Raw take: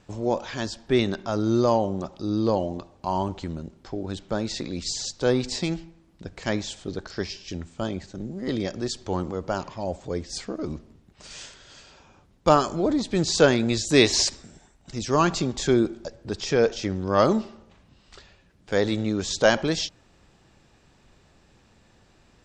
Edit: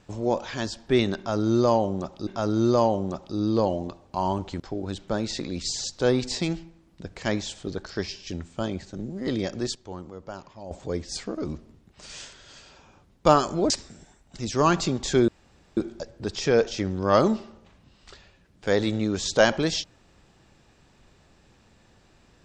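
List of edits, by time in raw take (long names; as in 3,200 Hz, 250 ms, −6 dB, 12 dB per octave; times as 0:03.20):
0:01.17–0:02.27: repeat, 2 plays
0:03.50–0:03.81: remove
0:08.96–0:09.92: clip gain −10.5 dB
0:12.91–0:14.24: remove
0:15.82: splice in room tone 0.49 s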